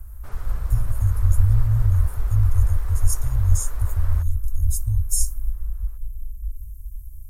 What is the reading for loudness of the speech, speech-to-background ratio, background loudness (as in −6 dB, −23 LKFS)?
−23.5 LKFS, 17.5 dB, −41.0 LKFS